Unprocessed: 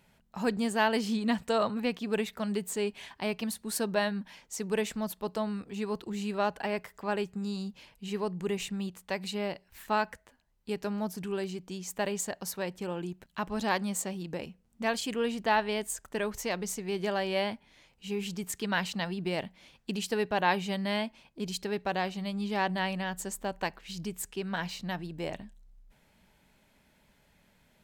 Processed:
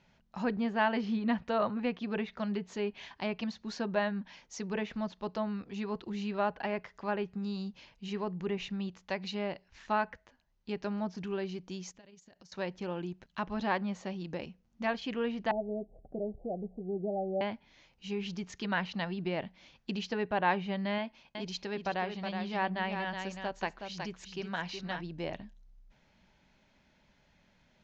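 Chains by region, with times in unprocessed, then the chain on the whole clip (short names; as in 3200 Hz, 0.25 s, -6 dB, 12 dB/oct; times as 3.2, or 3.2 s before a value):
11.91–12.52 bell 900 Hz -7 dB 2.3 oct + compressor 12:1, threshold -48 dBFS + AM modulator 22 Hz, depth 35%
15.51–17.41 Chebyshev low-pass 780 Hz, order 8 + upward compressor, threshold -43 dBFS
20.98–25.01 low shelf 350 Hz -4 dB + echo 0.369 s -6.5 dB
whole clip: treble ducked by the level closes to 2500 Hz, closed at -27 dBFS; steep low-pass 6700 Hz 72 dB/oct; notch 440 Hz, Q 12; gain -1.5 dB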